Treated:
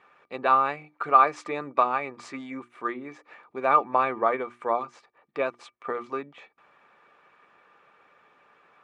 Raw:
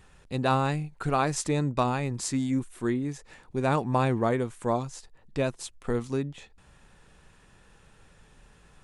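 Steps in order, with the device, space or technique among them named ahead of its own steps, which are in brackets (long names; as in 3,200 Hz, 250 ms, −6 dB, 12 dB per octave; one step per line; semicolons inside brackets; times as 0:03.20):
mains-hum notches 60/120/180/240/300/360 Hz
harmonic and percussive parts rebalanced percussive +5 dB
tin-can telephone (band-pass filter 460–2,100 Hz; hollow resonant body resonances 1,200/2,300 Hz, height 17 dB, ringing for 95 ms)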